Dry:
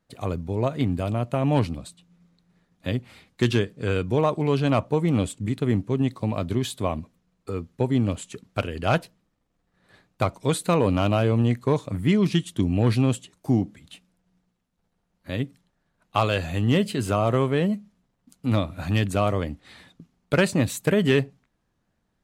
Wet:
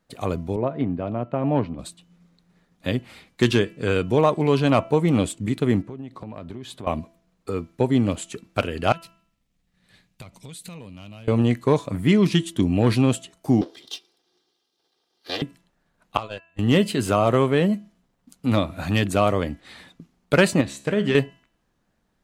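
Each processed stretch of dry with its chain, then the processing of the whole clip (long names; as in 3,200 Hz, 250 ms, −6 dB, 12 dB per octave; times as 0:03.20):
0:00.56–0:01.79: high-pass filter 150 Hz 6 dB per octave + head-to-tape spacing loss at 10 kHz 43 dB
0:05.82–0:06.87: low-pass filter 2,300 Hz 6 dB per octave + downward compressor 8 to 1, threshold −34 dBFS
0:08.92–0:11.28: flat-topped bell 680 Hz −10.5 dB 2.8 octaves + downward compressor 16 to 1, threshold −38 dBFS
0:13.61–0:15.42: lower of the sound and its delayed copy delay 2.5 ms + high-pass filter 250 Hz + flat-topped bell 4,200 Hz +13.5 dB 1.1 octaves
0:16.17–0:16.59: low-pass filter 8,900 Hz + noise gate −22 dBFS, range −44 dB + downward compressor 12 to 1, threshold −30 dBFS
0:20.61–0:21.15: low-pass filter 6,900 Hz + tuned comb filter 69 Hz, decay 0.56 s
whole clip: parametric band 100 Hz −5 dB 1.2 octaves; hum removal 332.8 Hz, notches 9; level +4 dB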